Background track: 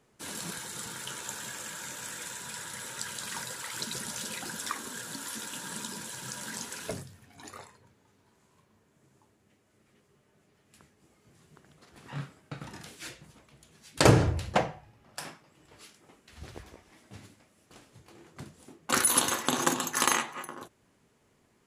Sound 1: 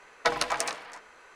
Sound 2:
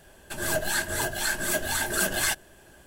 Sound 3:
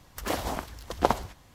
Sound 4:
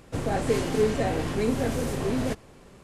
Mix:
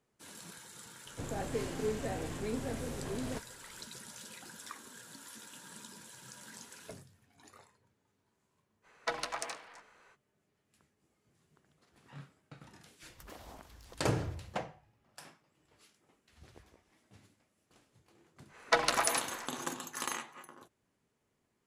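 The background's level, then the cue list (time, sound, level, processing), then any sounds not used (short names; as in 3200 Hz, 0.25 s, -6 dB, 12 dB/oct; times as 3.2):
background track -12 dB
1.05 add 4 -11.5 dB + vibrato 8.7 Hz 15 cents
8.82 add 1 -9.5 dB, fades 0.05 s
13.02 add 3 -8.5 dB + compressor 2.5:1, threshold -44 dBFS
18.47 add 1 -1.5 dB, fades 0.10 s
not used: 2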